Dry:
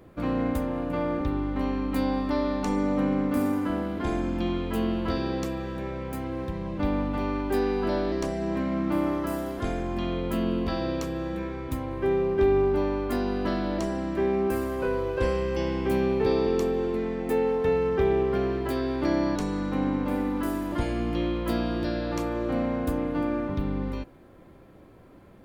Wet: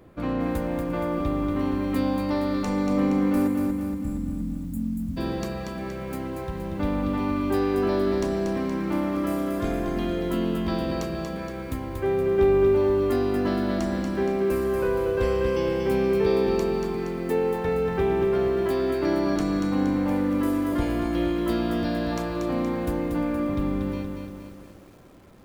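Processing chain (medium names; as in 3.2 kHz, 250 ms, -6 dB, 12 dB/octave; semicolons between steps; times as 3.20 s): spectral selection erased 3.48–5.17 s, 280–6700 Hz; bit-crushed delay 235 ms, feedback 55%, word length 9-bit, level -5 dB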